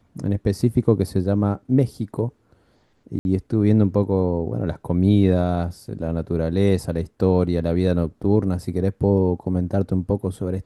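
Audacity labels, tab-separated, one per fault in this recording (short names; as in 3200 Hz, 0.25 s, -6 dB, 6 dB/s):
3.190000	3.250000	gap 61 ms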